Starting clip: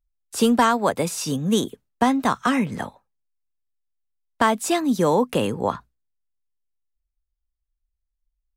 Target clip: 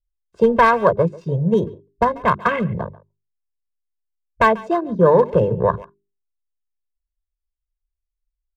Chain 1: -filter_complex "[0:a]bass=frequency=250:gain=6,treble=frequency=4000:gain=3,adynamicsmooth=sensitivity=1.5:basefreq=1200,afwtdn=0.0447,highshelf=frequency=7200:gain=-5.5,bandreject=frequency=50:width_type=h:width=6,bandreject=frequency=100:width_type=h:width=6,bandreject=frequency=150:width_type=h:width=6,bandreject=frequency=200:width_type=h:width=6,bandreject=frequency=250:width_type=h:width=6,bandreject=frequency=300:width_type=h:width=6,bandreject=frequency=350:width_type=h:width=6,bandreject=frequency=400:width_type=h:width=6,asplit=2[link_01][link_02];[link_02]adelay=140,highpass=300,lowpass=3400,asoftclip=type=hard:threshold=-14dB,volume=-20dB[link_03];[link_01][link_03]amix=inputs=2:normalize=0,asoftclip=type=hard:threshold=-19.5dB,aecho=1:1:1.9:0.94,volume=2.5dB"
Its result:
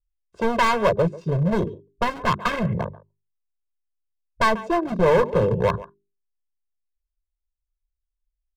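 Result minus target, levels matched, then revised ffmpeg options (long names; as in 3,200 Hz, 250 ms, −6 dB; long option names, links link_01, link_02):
hard clipping: distortion +19 dB
-filter_complex "[0:a]bass=frequency=250:gain=6,treble=frequency=4000:gain=3,adynamicsmooth=sensitivity=1.5:basefreq=1200,afwtdn=0.0447,highshelf=frequency=7200:gain=-5.5,bandreject=frequency=50:width_type=h:width=6,bandreject=frequency=100:width_type=h:width=6,bandreject=frequency=150:width_type=h:width=6,bandreject=frequency=200:width_type=h:width=6,bandreject=frequency=250:width_type=h:width=6,bandreject=frequency=300:width_type=h:width=6,bandreject=frequency=350:width_type=h:width=6,bandreject=frequency=400:width_type=h:width=6,asplit=2[link_01][link_02];[link_02]adelay=140,highpass=300,lowpass=3400,asoftclip=type=hard:threshold=-14dB,volume=-20dB[link_03];[link_01][link_03]amix=inputs=2:normalize=0,asoftclip=type=hard:threshold=-8dB,aecho=1:1:1.9:0.94,volume=2.5dB"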